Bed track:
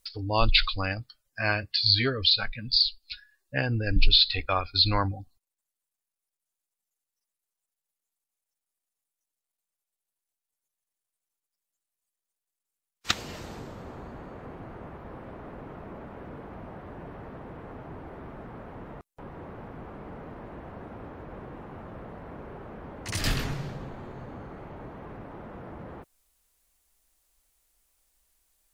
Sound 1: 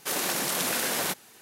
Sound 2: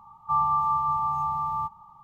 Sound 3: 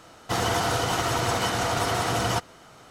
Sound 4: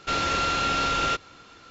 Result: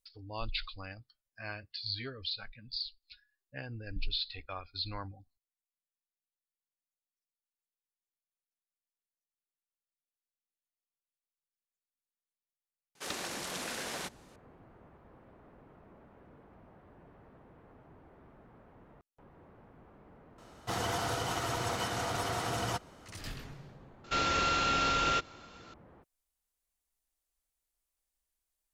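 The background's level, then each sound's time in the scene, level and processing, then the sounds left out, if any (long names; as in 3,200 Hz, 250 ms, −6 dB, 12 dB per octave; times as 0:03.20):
bed track −15.5 dB
0:12.95: mix in 1 −9.5 dB + low-pass filter 7,900 Hz
0:20.38: mix in 3 −9 dB
0:24.04: mix in 4 −4.5 dB
not used: 2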